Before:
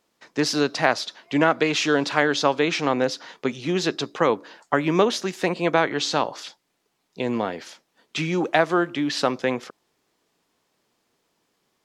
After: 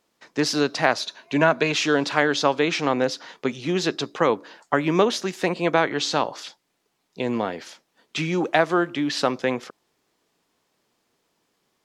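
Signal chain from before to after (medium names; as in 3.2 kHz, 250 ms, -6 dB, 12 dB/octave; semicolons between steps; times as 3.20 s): 1.00–1.72 s: rippled EQ curve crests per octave 1.5, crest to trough 7 dB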